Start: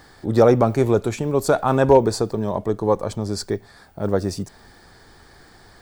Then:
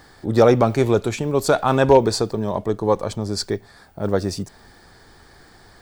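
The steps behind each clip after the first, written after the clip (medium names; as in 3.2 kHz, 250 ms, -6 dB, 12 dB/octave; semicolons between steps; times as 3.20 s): dynamic bell 3.4 kHz, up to +7 dB, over -38 dBFS, Q 0.72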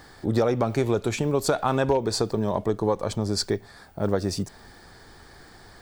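compression 6:1, threshold -19 dBFS, peak gain reduction 11 dB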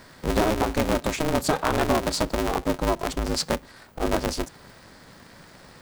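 polarity switched at an audio rate 160 Hz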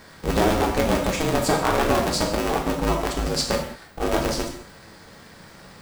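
gated-style reverb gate 230 ms falling, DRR 0.5 dB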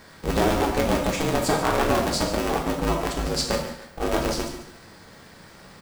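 feedback delay 143 ms, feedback 34%, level -13.5 dB; trim -1.5 dB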